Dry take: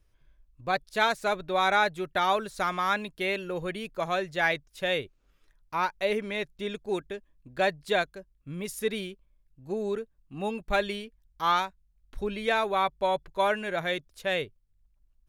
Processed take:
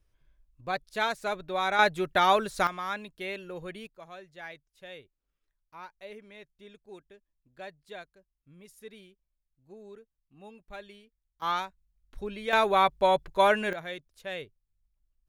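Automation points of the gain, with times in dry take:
-4 dB
from 1.79 s +3 dB
from 2.67 s -7 dB
from 3.87 s -17.5 dB
from 11.42 s -5 dB
from 12.53 s +3.5 dB
from 13.73 s -8.5 dB

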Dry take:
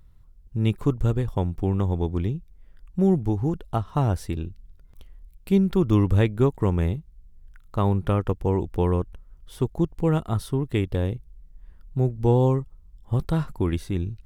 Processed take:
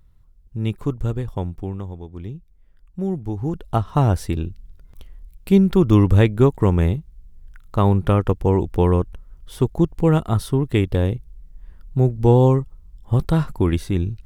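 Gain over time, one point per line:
1.48 s -1 dB
2.08 s -11.5 dB
2.33 s -4.5 dB
3.2 s -4.5 dB
3.77 s +5.5 dB

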